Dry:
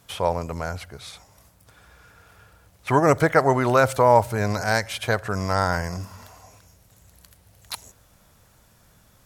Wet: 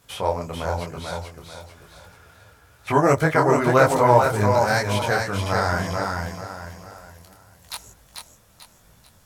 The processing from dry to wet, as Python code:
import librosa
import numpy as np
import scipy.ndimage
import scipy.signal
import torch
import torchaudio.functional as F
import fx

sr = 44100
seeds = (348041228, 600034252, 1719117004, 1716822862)

p1 = x + fx.echo_feedback(x, sr, ms=441, feedback_pct=36, wet_db=-4.0, dry=0)
p2 = fx.detune_double(p1, sr, cents=35)
y = p2 * 10.0 ** (3.5 / 20.0)